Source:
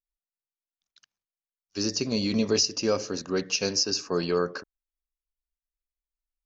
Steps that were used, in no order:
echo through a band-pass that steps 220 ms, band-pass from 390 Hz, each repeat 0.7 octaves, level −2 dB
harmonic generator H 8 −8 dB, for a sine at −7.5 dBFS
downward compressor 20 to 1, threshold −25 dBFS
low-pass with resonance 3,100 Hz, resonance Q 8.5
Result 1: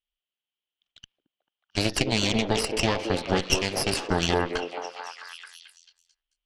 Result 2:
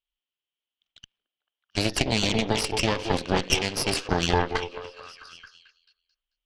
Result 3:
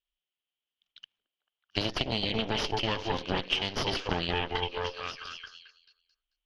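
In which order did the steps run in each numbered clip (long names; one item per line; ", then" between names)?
low-pass with resonance, then downward compressor, then harmonic generator, then echo through a band-pass that steps
low-pass with resonance, then downward compressor, then echo through a band-pass that steps, then harmonic generator
echo through a band-pass that steps, then harmonic generator, then low-pass with resonance, then downward compressor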